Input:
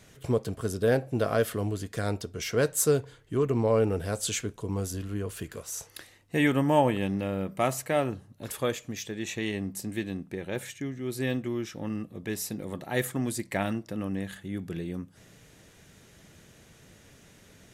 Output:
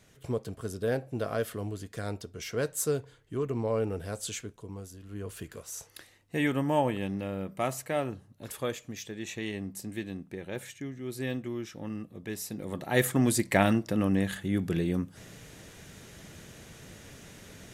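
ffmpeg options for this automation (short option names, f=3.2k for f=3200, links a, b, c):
-af "volume=15dB,afade=t=out:st=4.2:d=0.8:silence=0.354813,afade=t=in:st=5:d=0.28:silence=0.298538,afade=t=in:st=12.48:d=0.83:silence=0.316228"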